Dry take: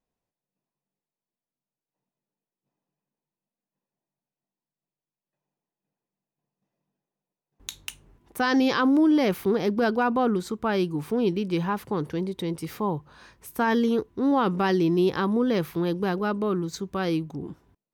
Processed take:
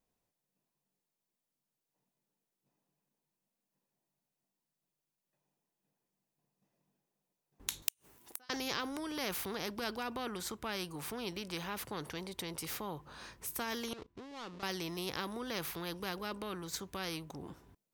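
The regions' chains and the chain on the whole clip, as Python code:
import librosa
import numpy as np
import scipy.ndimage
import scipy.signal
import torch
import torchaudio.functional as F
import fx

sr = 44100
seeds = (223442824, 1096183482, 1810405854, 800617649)

y = fx.chain(x, sr, fx.highpass(hz=43.0, slope=12),
    fx.riaa(side='recording'),
    fx.gate_flip(shuts_db=-20.0, range_db=-39), at=(7.82, 8.5))
y = fx.chain(y, sr, fx.dead_time(dead_ms=0.14),
    fx.lowpass(hz=4400.0, slope=12),
    fx.level_steps(step_db=19), at=(13.93, 14.63))
y = fx.high_shelf(y, sr, hz=5100.0, db=5.5)
y = fx.spectral_comp(y, sr, ratio=2.0)
y = y * 10.0 ** (-4.5 / 20.0)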